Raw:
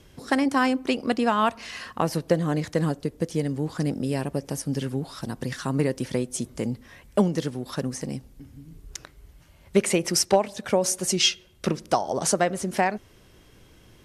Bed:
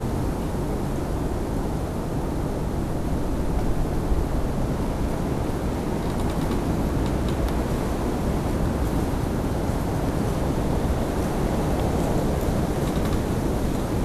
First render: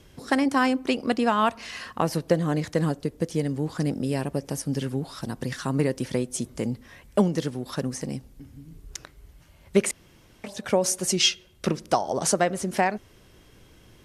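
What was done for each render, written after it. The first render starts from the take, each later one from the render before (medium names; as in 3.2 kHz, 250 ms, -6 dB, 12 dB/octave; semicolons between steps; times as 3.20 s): 9.91–10.44 s: room tone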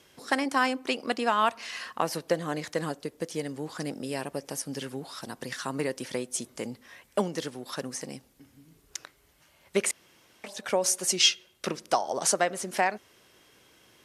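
high-pass 640 Hz 6 dB/octave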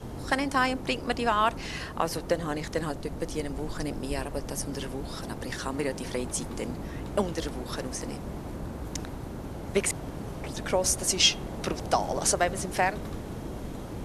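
add bed -13 dB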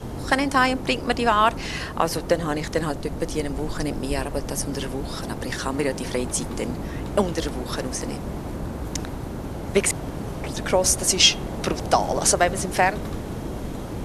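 trim +6 dB; peak limiter -3 dBFS, peak gain reduction 1 dB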